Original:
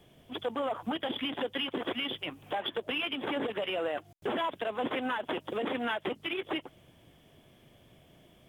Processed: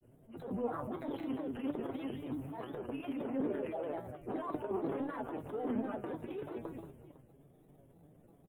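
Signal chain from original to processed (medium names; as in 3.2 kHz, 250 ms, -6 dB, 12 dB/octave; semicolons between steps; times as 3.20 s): transient shaper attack -11 dB, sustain +11 dB; feedback comb 140 Hz, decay 0.2 s, harmonics all, mix 80%; multi-tap echo 178/506 ms -9.5/-17.5 dB; granulator, spray 22 ms, pitch spread up and down by 3 st; FFT filter 400 Hz 0 dB, 1.4 kHz -11 dB, 4.4 kHz -28 dB, 9.9 kHz -5 dB; trim +6.5 dB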